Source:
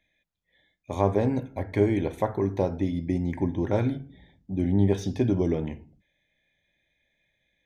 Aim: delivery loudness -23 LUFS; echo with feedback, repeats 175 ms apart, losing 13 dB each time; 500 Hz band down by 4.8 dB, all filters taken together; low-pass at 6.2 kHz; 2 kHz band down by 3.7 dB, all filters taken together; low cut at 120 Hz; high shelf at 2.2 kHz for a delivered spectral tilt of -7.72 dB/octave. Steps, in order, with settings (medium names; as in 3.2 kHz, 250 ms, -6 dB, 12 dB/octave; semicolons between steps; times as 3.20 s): high-pass 120 Hz; low-pass 6.2 kHz; peaking EQ 500 Hz -6.5 dB; peaking EQ 2 kHz -7.5 dB; treble shelf 2.2 kHz +6.5 dB; feedback delay 175 ms, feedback 22%, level -13 dB; trim +6.5 dB